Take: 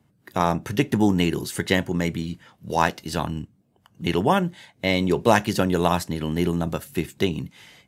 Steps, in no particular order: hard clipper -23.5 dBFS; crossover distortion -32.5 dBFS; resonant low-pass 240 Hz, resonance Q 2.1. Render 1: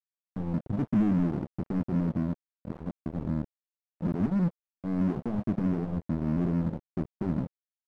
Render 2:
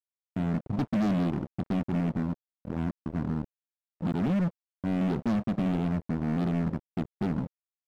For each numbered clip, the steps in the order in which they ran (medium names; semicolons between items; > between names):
hard clipper > resonant low-pass > crossover distortion; resonant low-pass > crossover distortion > hard clipper